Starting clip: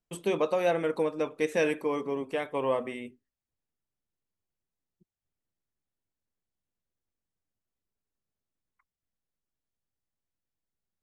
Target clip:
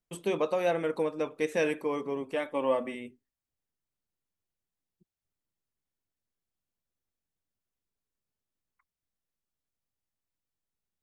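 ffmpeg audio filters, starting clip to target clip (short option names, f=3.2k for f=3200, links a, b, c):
-filter_complex "[0:a]asettb=1/sr,asplit=3[a][b][c];[a]atrim=end=2.364[d];[b]atrim=start=2.36:end=2.95,asetpts=PTS-STARTPTS,afade=t=in:d=0.004:c=qsin,afade=t=out:st=0.586:d=0.004:c=qsin,aecho=1:1:3.5:0.59,atrim=end_sample=26019[e];[c]atrim=start=2.946[f];[d][e]acrossfade=d=0.004:c1=hsin:c2=qsin[g];[g][f]acrossfade=d=0.004:c1=qsin:c2=hsin,volume=-1.5dB"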